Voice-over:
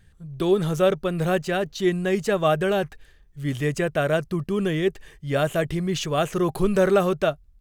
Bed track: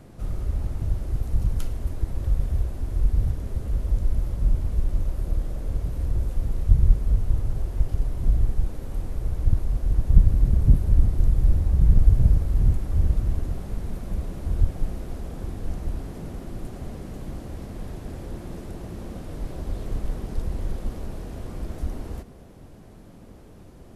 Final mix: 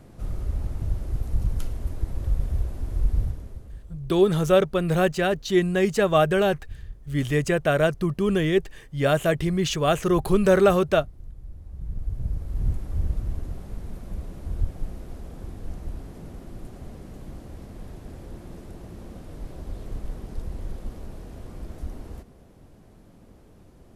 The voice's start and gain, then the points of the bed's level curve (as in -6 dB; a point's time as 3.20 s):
3.70 s, +1.5 dB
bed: 3.19 s -1.5 dB
4.01 s -22 dB
11.50 s -22 dB
12.70 s -5 dB